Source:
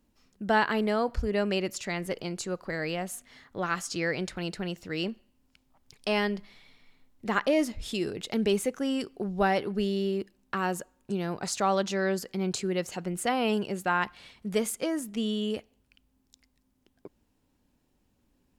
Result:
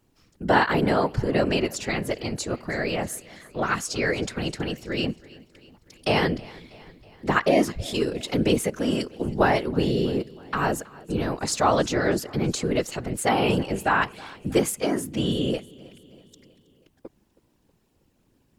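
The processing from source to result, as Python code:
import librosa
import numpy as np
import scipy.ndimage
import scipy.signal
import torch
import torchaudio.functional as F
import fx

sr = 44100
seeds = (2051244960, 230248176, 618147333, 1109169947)

y = fx.whisperise(x, sr, seeds[0])
y = fx.echo_feedback(y, sr, ms=321, feedback_pct=59, wet_db=-22.0)
y = F.gain(torch.from_numpy(y), 5.0).numpy()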